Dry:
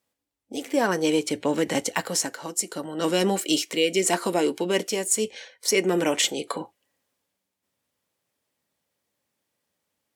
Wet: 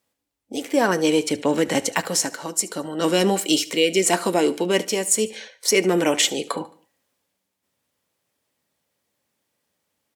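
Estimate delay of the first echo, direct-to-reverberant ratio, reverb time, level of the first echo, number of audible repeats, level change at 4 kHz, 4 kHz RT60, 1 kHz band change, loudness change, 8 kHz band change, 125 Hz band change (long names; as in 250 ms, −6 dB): 73 ms, no reverb audible, no reverb audible, −19.0 dB, 3, +3.5 dB, no reverb audible, +3.5 dB, +3.5 dB, +3.5 dB, +3.5 dB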